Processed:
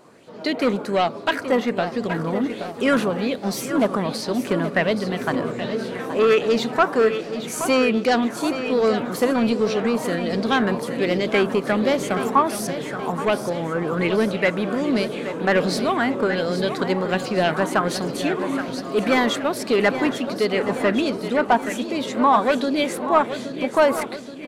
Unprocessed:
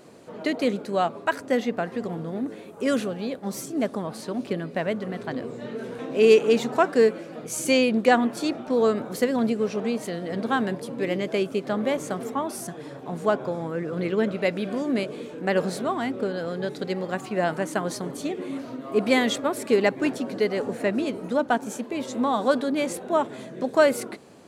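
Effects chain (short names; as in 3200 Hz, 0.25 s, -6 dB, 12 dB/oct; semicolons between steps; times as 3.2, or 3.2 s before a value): dynamic EQ 7400 Hz, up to -4 dB, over -46 dBFS, Q 1.1; AGC gain up to 10 dB; soft clip -9.5 dBFS, distortion -15 dB; on a send: feedback echo 0.825 s, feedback 55%, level -10.5 dB; on the sum: LFO bell 1.3 Hz 960–5200 Hz +10 dB; gain -3 dB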